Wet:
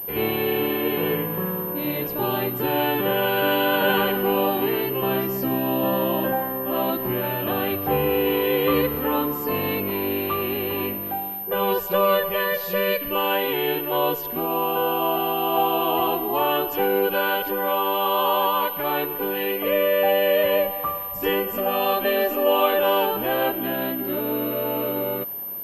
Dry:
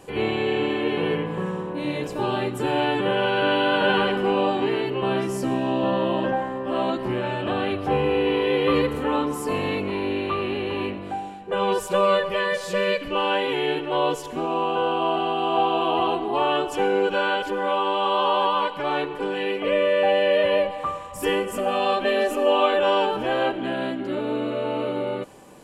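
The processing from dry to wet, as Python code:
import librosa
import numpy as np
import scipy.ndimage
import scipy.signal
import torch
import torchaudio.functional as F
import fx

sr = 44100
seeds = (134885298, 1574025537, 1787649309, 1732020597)

y = fx.pwm(x, sr, carrier_hz=13000.0)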